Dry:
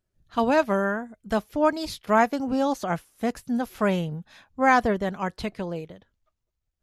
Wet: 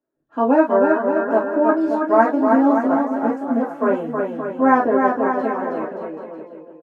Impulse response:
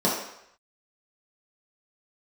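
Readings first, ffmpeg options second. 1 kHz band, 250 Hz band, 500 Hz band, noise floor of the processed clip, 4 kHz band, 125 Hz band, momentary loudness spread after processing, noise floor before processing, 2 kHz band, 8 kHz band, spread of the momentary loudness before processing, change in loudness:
+6.0 dB, +8.5 dB, +8.0 dB, -52 dBFS, under -10 dB, -6.5 dB, 13 LU, -81 dBFS, +2.0 dB, under -15 dB, 12 LU, +7.0 dB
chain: -filter_complex "[0:a]acrossover=split=200 2100:gain=0.251 1 0.158[a][b][c];[a][b][c]amix=inputs=3:normalize=0,aecho=1:1:320|576|780.8|944.6|1076:0.631|0.398|0.251|0.158|0.1[d];[1:a]atrim=start_sample=2205,atrim=end_sample=3969,asetrate=66150,aresample=44100[e];[d][e]afir=irnorm=-1:irlink=0,volume=-10dB"

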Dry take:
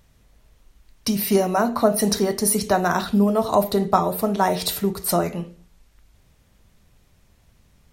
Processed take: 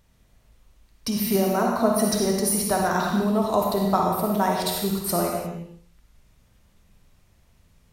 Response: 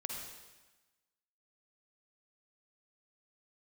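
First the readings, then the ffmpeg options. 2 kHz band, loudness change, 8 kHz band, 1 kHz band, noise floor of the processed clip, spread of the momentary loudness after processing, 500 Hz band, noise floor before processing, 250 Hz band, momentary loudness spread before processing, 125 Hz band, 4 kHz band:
-2.0 dB, -2.0 dB, -2.0 dB, -2.0 dB, -61 dBFS, 6 LU, -2.5 dB, -59 dBFS, -1.5 dB, 5 LU, -1.5 dB, -2.0 dB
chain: -filter_complex "[1:a]atrim=start_sample=2205,afade=t=out:st=0.41:d=0.01,atrim=end_sample=18522[a];[0:a][a]afir=irnorm=-1:irlink=0,volume=-2dB"

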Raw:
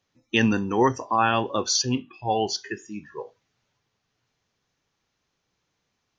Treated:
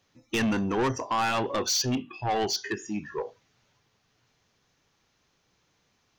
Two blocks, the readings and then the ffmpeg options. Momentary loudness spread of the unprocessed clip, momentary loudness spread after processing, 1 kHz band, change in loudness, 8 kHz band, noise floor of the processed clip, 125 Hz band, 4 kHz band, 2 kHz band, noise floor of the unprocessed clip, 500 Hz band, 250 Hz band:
15 LU, 9 LU, -4.5 dB, -4.5 dB, n/a, -71 dBFS, -3.5 dB, -2.5 dB, -3.5 dB, -77 dBFS, -3.5 dB, -3.5 dB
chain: -filter_complex "[0:a]asplit=2[a][b];[b]acompressor=threshold=-33dB:ratio=6,volume=0dB[c];[a][c]amix=inputs=2:normalize=0,asoftclip=type=tanh:threshold=-22dB"

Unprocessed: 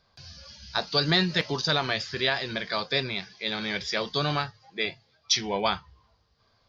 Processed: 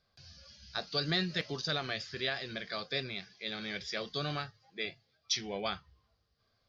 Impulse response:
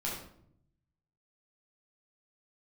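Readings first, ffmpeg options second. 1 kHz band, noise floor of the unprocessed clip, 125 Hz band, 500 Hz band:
-11.0 dB, -67 dBFS, -8.5 dB, -9.0 dB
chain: -af "equalizer=f=940:w=6.8:g=-13.5,volume=-8.5dB"

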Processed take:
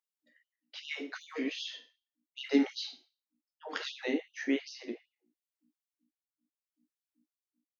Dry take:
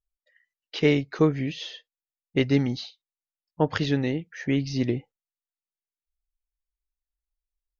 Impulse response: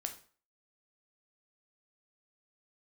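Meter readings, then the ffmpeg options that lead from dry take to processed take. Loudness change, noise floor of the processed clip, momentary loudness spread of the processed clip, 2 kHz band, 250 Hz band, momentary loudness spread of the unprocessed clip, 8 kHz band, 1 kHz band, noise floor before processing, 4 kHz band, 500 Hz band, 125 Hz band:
-9.5 dB, under -85 dBFS, 19 LU, -6.0 dB, -8.5 dB, 14 LU, n/a, -11.5 dB, under -85 dBFS, -5.0 dB, -11.5 dB, under -40 dB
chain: -filter_complex "[0:a]asplit=2[a][b];[b]adelay=80,highpass=300,lowpass=3.4k,asoftclip=type=hard:threshold=-18dB,volume=-21dB[c];[a][c]amix=inputs=2:normalize=0,aeval=exprs='val(0)+0.00126*(sin(2*PI*60*n/s)+sin(2*PI*2*60*n/s)/2+sin(2*PI*3*60*n/s)/3+sin(2*PI*4*60*n/s)/4+sin(2*PI*5*60*n/s)/5)':c=same,tremolo=f=0.71:d=0.69[d];[1:a]atrim=start_sample=2205[e];[d][e]afir=irnorm=-1:irlink=0,afftfilt=real='re*gte(b*sr/1024,200*pow(2800/200,0.5+0.5*sin(2*PI*2.6*pts/sr)))':imag='im*gte(b*sr/1024,200*pow(2800/200,0.5+0.5*sin(2*PI*2.6*pts/sr)))':win_size=1024:overlap=0.75"

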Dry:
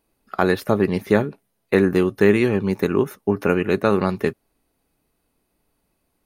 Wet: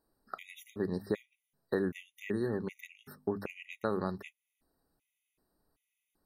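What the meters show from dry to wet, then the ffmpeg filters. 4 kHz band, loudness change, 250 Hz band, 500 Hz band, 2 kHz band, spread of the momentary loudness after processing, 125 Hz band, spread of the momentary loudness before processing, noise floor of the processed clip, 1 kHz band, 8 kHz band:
-17.0 dB, -17.0 dB, -17.0 dB, -17.5 dB, -18.5 dB, 14 LU, -17.5 dB, 6 LU, under -85 dBFS, -17.5 dB, n/a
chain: -af "bandreject=f=50:t=h:w=6,bandreject=f=100:t=h:w=6,bandreject=f=150:t=h:w=6,bandreject=f=200:t=h:w=6,bandreject=f=250:t=h:w=6,acompressor=threshold=-28dB:ratio=2,afftfilt=real='re*gt(sin(2*PI*1.3*pts/sr)*(1-2*mod(floor(b*sr/1024/1900),2)),0)':imag='im*gt(sin(2*PI*1.3*pts/sr)*(1-2*mod(floor(b*sr/1024/1900),2)),0)':win_size=1024:overlap=0.75,volume=-6dB"

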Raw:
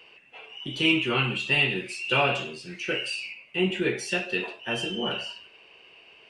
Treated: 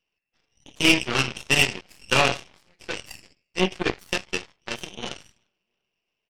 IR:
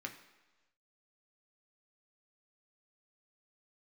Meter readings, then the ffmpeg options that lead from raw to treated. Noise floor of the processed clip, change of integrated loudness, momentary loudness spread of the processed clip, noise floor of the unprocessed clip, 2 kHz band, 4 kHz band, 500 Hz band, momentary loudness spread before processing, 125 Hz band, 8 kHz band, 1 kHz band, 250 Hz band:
-82 dBFS, +3.0 dB, 16 LU, -54 dBFS, +1.5 dB, +2.0 dB, 0.0 dB, 14 LU, +0.5 dB, +10.5 dB, +2.5 dB, +0.5 dB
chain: -filter_complex "[0:a]asplit=2[a][b];[b]adelay=350,lowpass=f=2.3k:p=1,volume=-19dB,asplit=2[c][d];[d]adelay=350,lowpass=f=2.3k:p=1,volume=0.46,asplit=2[e][f];[f]adelay=350,lowpass=f=2.3k:p=1,volume=0.46,asplit=2[g][h];[h]adelay=350,lowpass=f=2.3k:p=1,volume=0.46[i];[a][c][e][g][i]amix=inputs=5:normalize=0,aeval=exprs='0.316*(cos(1*acos(clip(val(0)/0.316,-1,1)))-cos(1*PI/2))+0.0631*(cos(3*acos(clip(val(0)/0.316,-1,1)))-cos(3*PI/2))+0.0251*(cos(4*acos(clip(val(0)/0.316,-1,1)))-cos(4*PI/2))+0.00891*(cos(5*acos(clip(val(0)/0.316,-1,1)))-cos(5*PI/2))+0.0251*(cos(7*acos(clip(val(0)/0.316,-1,1)))-cos(7*PI/2))':c=same,volume=7.5dB"

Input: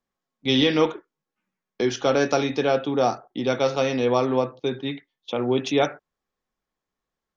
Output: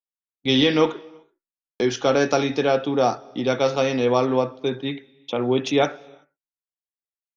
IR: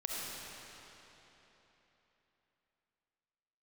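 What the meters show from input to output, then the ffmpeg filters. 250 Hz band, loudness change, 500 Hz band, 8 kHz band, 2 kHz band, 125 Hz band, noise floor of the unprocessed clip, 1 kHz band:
+1.5 dB, +1.5 dB, +1.5 dB, n/a, +1.5 dB, +1.5 dB, under -85 dBFS, +1.5 dB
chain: -filter_complex "[0:a]agate=range=-33dB:threshold=-44dB:ratio=3:detection=peak,asplit=2[a][b];[1:a]atrim=start_sample=2205,afade=t=out:st=0.37:d=0.01,atrim=end_sample=16758,adelay=64[c];[b][c]afir=irnorm=-1:irlink=0,volume=-25.5dB[d];[a][d]amix=inputs=2:normalize=0,volume=1.5dB"

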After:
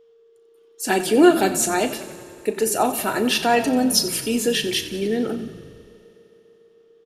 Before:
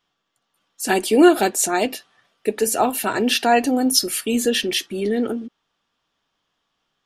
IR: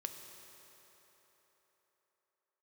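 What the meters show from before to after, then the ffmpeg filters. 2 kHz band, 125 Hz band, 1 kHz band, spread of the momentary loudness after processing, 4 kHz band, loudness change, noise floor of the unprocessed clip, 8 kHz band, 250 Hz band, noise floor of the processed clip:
-1.0 dB, +3.0 dB, -1.5 dB, 14 LU, -1.0 dB, -1.0 dB, -75 dBFS, -1.0 dB, -1.0 dB, -55 dBFS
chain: -filter_complex "[0:a]aeval=exprs='val(0)+0.00355*sin(2*PI*460*n/s)':c=same,asplit=8[a][b][c][d][e][f][g][h];[b]adelay=91,afreqshift=-31,volume=-14dB[i];[c]adelay=182,afreqshift=-62,volume=-17.9dB[j];[d]adelay=273,afreqshift=-93,volume=-21.8dB[k];[e]adelay=364,afreqshift=-124,volume=-25.6dB[l];[f]adelay=455,afreqshift=-155,volume=-29.5dB[m];[g]adelay=546,afreqshift=-186,volume=-33.4dB[n];[h]adelay=637,afreqshift=-217,volume=-37.3dB[o];[a][i][j][k][l][m][n][o]amix=inputs=8:normalize=0,asplit=2[p][q];[1:a]atrim=start_sample=2205,adelay=36[r];[q][r]afir=irnorm=-1:irlink=0,volume=-9.5dB[s];[p][s]amix=inputs=2:normalize=0,volume=-1.5dB"

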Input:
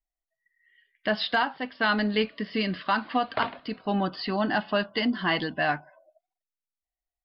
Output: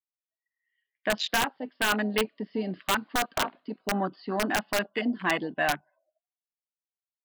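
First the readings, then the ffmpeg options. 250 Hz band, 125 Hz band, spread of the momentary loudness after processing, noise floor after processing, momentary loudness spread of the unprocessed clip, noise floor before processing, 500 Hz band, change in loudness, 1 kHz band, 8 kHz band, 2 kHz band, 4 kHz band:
-3.0 dB, -4.0 dB, 6 LU, under -85 dBFS, 5 LU, under -85 dBFS, -1.5 dB, -1.5 dB, -2.0 dB, n/a, -1.0 dB, -1.0 dB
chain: -filter_complex "[0:a]afwtdn=0.0316,highpass=210,acrossover=split=1800[a][b];[a]aeval=exprs='(mod(7.5*val(0)+1,2)-1)/7.5':c=same[c];[c][b]amix=inputs=2:normalize=0"

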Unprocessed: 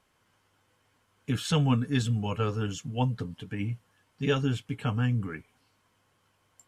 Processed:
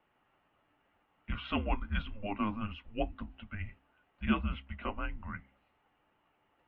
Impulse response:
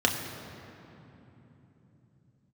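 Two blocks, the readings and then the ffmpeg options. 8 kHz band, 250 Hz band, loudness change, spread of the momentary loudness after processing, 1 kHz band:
under -35 dB, -6.5 dB, -8.0 dB, 12 LU, -2.5 dB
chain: -af "highpass=f=260:t=q:w=0.5412,highpass=f=260:t=q:w=1.307,lowpass=f=3.4k:t=q:w=0.5176,lowpass=f=3.4k:t=q:w=0.7071,lowpass=f=3.4k:t=q:w=1.932,afreqshift=-210,aemphasis=mode=reproduction:type=50fm,bandreject=f=66.03:t=h:w=4,bandreject=f=132.06:t=h:w=4,bandreject=f=198.09:t=h:w=4,bandreject=f=264.12:t=h:w=4,volume=-1.5dB"

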